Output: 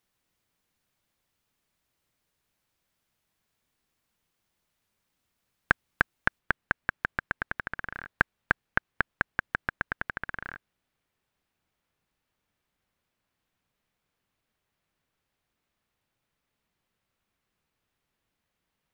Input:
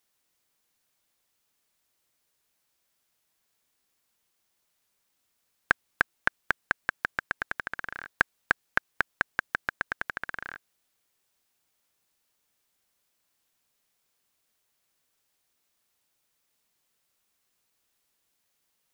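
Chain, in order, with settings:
bass and treble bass +8 dB, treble −6 dB, from 0:06.38 treble −13 dB

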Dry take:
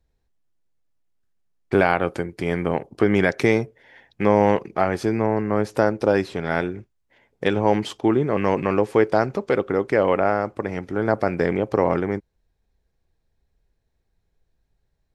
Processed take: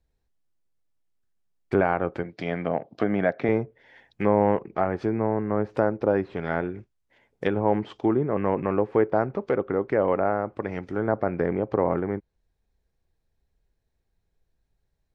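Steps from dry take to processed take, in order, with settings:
0:02.23–0:03.49: loudspeaker in its box 140–5,900 Hz, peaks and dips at 380 Hz −8 dB, 660 Hz +8 dB, 960 Hz −4 dB, 3,700 Hz +5 dB
treble cut that deepens with the level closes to 1,500 Hz, closed at −18 dBFS
level −3.5 dB

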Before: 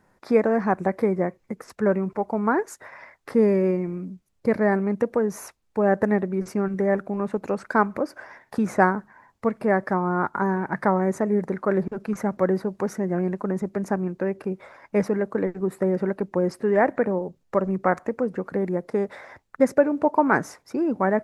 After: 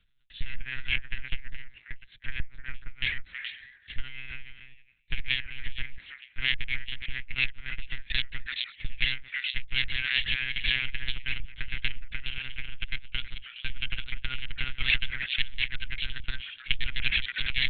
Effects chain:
gliding playback speed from 74% → 166%
harmonic generator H 6 −19 dB, 7 −42 dB, 8 −7 dB, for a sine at −2.5 dBFS
echo through a band-pass that steps 105 ms, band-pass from 200 Hz, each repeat 1.4 octaves, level −2 dB
brickwall limiter −12 dBFS, peak gain reduction 10.5 dB
inverse Chebyshev band-stop filter 190–1,000 Hz, stop band 50 dB
one-pitch LPC vocoder at 8 kHz 130 Hz
level +5.5 dB

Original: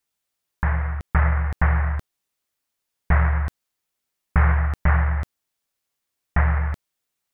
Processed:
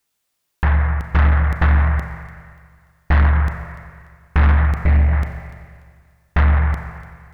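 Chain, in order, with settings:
0:04.71–0:05.13: flat-topped bell 1,200 Hz −12 dB 1.2 octaves
on a send: delay with a high-pass on its return 292 ms, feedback 35%, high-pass 2,300 Hz, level −15.5 dB
on the sum: four-comb reverb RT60 1.9 s, combs from 29 ms, DRR 8 dB
soft clipping −15.5 dBFS, distortion −13 dB
level +7 dB

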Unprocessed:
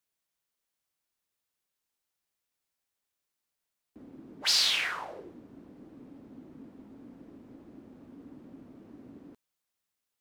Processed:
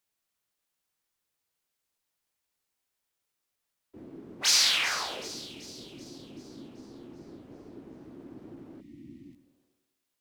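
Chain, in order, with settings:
pitch-shifted copies added −12 semitones −11 dB, +4 semitones −1 dB
echo with a time of its own for lows and highs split 2,800 Hz, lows 103 ms, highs 383 ms, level −13 dB
healed spectral selection 0:08.83–0:09.61, 360–1,800 Hz after

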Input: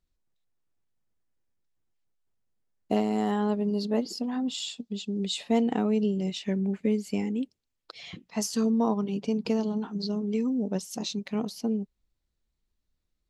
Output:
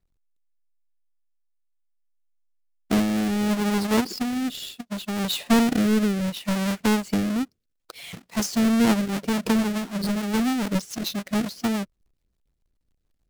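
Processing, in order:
each half-wave held at its own peak
rotating-speaker cabinet horn 0.7 Hz, later 7 Hz, at 0:08.51
level +2 dB

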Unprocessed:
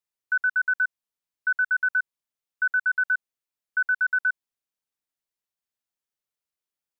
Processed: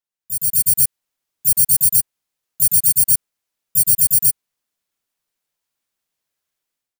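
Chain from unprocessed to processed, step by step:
samples in bit-reversed order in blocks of 32 samples
automatic gain control gain up to 12.5 dB
pitch-shifted copies added −4 semitones −3 dB, −3 semitones −16 dB, +4 semitones −1 dB
level −5.5 dB

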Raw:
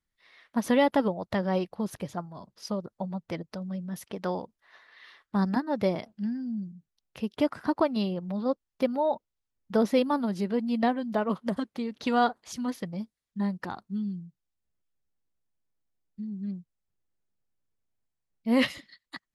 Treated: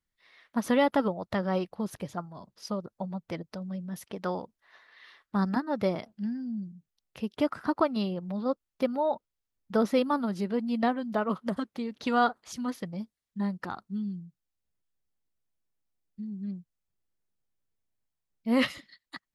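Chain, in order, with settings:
dynamic equaliser 1,300 Hz, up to +7 dB, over −51 dBFS, Q 4.7
level −1.5 dB

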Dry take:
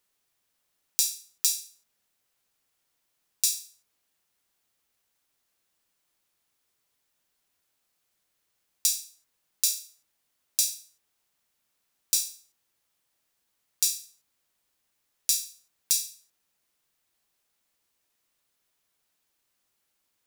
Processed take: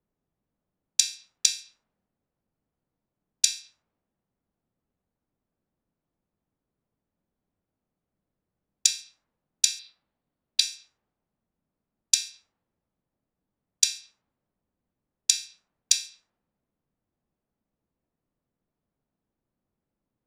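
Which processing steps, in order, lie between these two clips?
low-pass that shuts in the quiet parts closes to 430 Hz, open at −24.5 dBFS
drawn EQ curve 110 Hz 0 dB, 200 Hz +3 dB, 370 Hz −4 dB, 4,500 Hz +7 dB
treble cut that deepens with the level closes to 2,200 Hz, closed at −21 dBFS
0:09.79–0:10.61: high shelf with overshoot 5,300 Hz −7 dB, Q 3
level +8.5 dB

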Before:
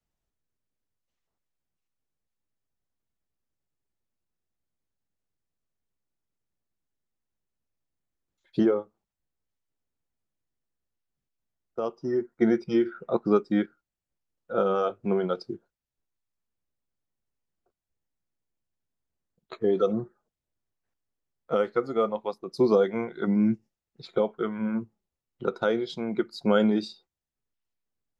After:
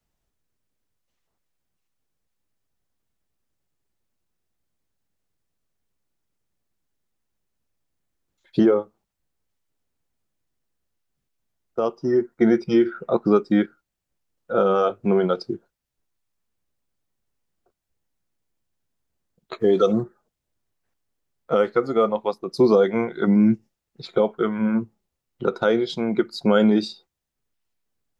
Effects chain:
0:19.59–0:20.02: high-shelf EQ 4,100 Hz → 3,100 Hz +11 dB
in parallel at +2 dB: brickwall limiter −17.5 dBFS, peak gain reduction 8 dB

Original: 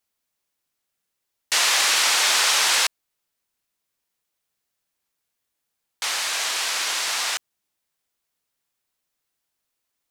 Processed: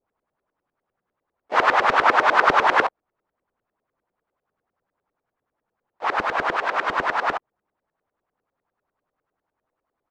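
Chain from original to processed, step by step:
auto-filter low-pass saw up 10 Hz 380–1,600 Hz
pitch-shifted copies added −4 semitones −14 dB, +3 semitones −15 dB
level +7 dB

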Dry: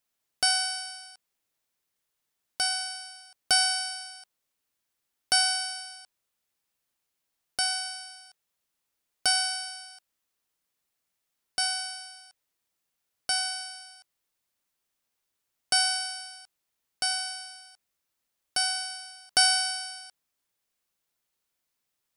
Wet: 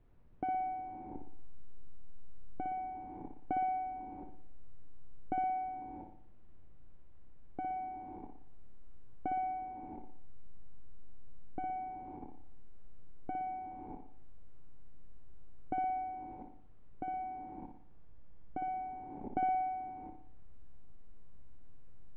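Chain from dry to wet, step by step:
hold until the input has moved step −41 dBFS
parametric band 2,700 Hz +6.5 dB 0.98 octaves
in parallel at +0.5 dB: upward compression, threshold −31 dBFS
on the sum: formant resonators in series u
background noise brown −70 dBFS
high-frequency loss of the air 350 metres
on a send: flutter between parallel walls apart 10.1 metres, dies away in 0.55 s
on the sum: level +8 dB

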